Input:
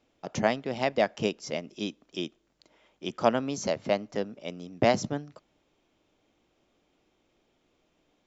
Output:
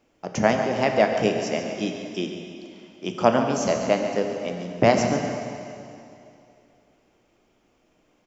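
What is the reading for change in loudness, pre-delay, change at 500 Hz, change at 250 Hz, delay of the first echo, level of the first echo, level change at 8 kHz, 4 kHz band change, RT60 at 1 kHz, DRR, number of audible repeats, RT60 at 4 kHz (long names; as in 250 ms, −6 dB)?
+6.5 dB, 7 ms, +6.5 dB, +7.0 dB, 142 ms, −10.5 dB, can't be measured, +3.5 dB, 2.6 s, 3.0 dB, 1, 2.5 s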